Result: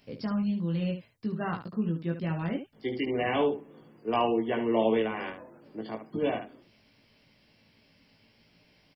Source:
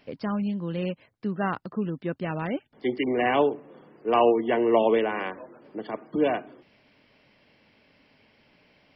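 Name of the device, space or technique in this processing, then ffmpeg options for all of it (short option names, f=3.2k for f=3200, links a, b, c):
slapback doubling: -filter_complex "[0:a]bass=f=250:g=8,treble=f=4k:g=14,asplit=3[a][b][c];[b]adelay=18,volume=-3dB[d];[c]adelay=73,volume=-8dB[e];[a][d][e]amix=inputs=3:normalize=0,volume=-8dB"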